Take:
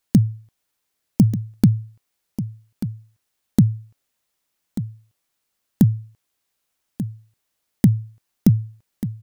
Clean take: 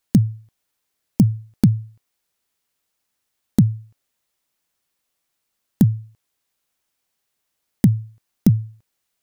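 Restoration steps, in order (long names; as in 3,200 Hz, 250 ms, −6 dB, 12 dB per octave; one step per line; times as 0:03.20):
echo removal 1,188 ms −12 dB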